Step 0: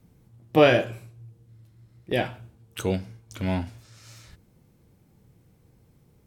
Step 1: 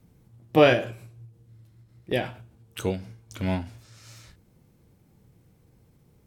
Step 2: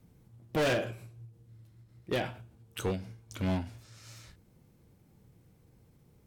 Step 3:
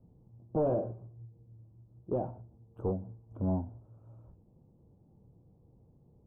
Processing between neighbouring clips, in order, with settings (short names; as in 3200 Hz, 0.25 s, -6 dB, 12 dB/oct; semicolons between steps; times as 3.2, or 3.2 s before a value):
ending taper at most 130 dB/s
overloaded stage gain 23 dB; gain -2.5 dB
inverse Chebyshev low-pass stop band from 1800 Hz, stop band 40 dB